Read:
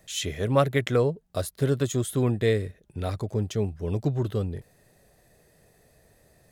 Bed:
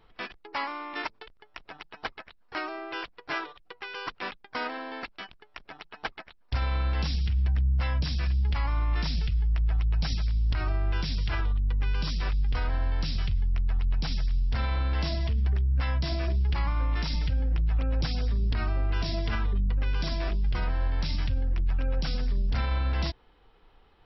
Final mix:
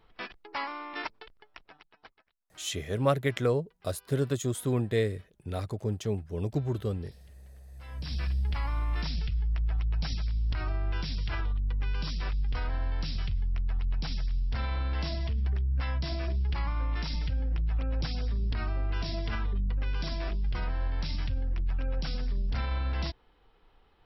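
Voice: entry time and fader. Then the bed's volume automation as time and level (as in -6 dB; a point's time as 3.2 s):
2.50 s, -4.0 dB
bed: 1.44 s -2.5 dB
2.34 s -26 dB
7.68 s -26 dB
8.14 s -3.5 dB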